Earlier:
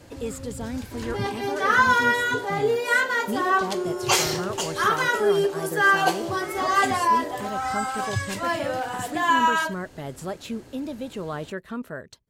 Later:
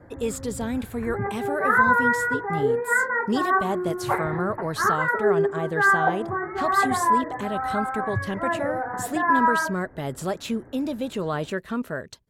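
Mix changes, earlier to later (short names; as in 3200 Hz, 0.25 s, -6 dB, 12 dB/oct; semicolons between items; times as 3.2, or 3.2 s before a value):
speech +4.5 dB; first sound: add steep low-pass 2000 Hz 72 dB/oct; second sound: muted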